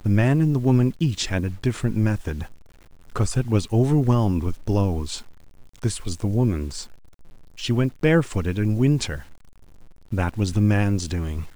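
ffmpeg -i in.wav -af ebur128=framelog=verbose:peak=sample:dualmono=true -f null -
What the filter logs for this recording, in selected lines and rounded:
Integrated loudness:
  I:         -19.7 LUFS
  Threshold: -30.7 LUFS
Loudness range:
  LRA:         3.3 LU
  Threshold: -41.1 LUFS
  LRA low:   -23.5 LUFS
  LRA high:  -20.2 LUFS
Sample peak:
  Peak:       -7.3 dBFS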